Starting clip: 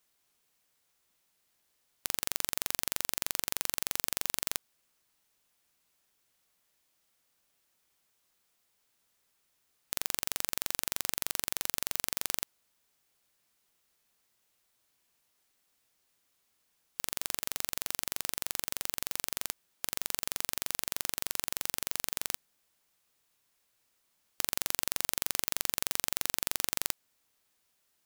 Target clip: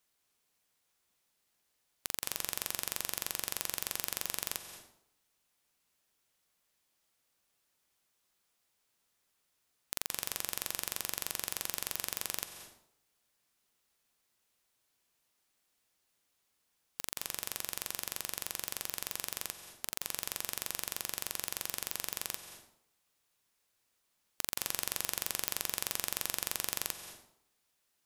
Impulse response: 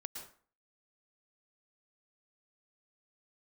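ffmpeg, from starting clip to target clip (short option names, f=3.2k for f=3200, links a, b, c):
-filter_complex "[0:a]asplit=2[a][b];[1:a]atrim=start_sample=2205,asetrate=26901,aresample=44100[c];[b][c]afir=irnorm=-1:irlink=0,volume=-1dB[d];[a][d]amix=inputs=2:normalize=0,volume=-7.5dB"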